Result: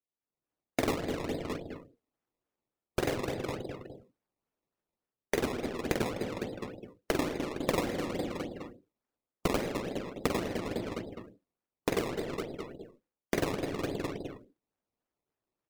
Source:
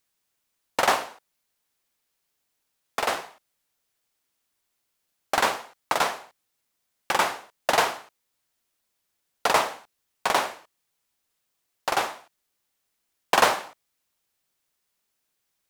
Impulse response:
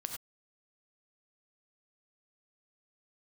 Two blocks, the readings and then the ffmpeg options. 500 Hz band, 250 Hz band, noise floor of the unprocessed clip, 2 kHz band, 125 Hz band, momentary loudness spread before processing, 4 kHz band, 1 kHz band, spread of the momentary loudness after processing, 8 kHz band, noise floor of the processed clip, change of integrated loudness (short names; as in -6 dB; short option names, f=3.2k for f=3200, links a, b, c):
-2.0 dB, +8.5 dB, -78 dBFS, -11.0 dB, +10.5 dB, 13 LU, -11.0 dB, -14.0 dB, 14 LU, -10.5 dB, under -85 dBFS, -9.5 dB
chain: -filter_complex "[0:a]aeval=exprs='val(0)*sin(2*PI*1200*n/s)':c=same,asplit=2[a][b];[b]lowshelf=f=490:g=10[c];[1:a]atrim=start_sample=2205[d];[c][d]afir=irnorm=-1:irlink=0,volume=-10dB[e];[a][e]amix=inputs=2:normalize=0,aresample=22050,aresample=44100,asplit=2[f][g];[g]adelay=206,lowpass=f=1.3k:p=1,volume=-11dB,asplit=2[h][i];[i]adelay=206,lowpass=f=1.3k:p=1,volume=0.43,asplit=2[j][k];[k]adelay=206,lowpass=f=1.3k:p=1,volume=0.43,asplit=2[l][m];[m]adelay=206,lowpass=f=1.3k:p=1,volume=0.43[n];[f][h][j][l][n]amix=inputs=5:normalize=0,dynaudnorm=f=260:g=3:m=13dB,equalizer=f=380:t=o:w=2.9:g=13,acompressor=threshold=-21dB:ratio=5,acrusher=samples=20:mix=1:aa=0.000001:lfo=1:lforange=20:lforate=3.5,afftdn=nr=19:nf=-45,volume=-7.5dB"